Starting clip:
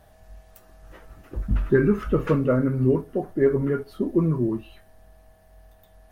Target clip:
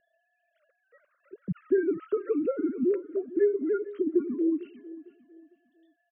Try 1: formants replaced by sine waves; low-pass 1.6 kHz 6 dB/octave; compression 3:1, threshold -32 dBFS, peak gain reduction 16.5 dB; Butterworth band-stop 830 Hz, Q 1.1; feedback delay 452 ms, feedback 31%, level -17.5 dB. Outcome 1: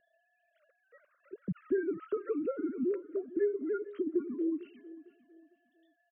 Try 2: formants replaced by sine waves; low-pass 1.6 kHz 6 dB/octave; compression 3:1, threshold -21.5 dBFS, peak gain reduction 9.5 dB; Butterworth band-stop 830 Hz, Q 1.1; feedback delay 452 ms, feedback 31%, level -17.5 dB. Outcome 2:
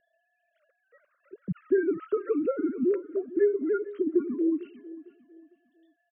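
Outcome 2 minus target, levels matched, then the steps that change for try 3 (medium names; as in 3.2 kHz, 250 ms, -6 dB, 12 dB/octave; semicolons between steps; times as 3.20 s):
1 kHz band +3.0 dB
add after Butterworth band-stop: dynamic bell 1.2 kHz, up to -4 dB, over -43 dBFS, Q 1.1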